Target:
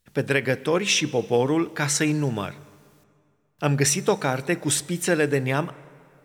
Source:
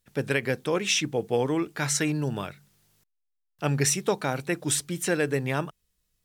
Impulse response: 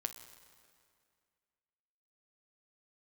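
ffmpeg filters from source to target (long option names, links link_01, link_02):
-filter_complex "[0:a]asplit=2[link_01][link_02];[1:a]atrim=start_sample=2205,highshelf=frequency=8200:gain=-9[link_03];[link_02][link_03]afir=irnorm=-1:irlink=0,volume=-3.5dB[link_04];[link_01][link_04]amix=inputs=2:normalize=0"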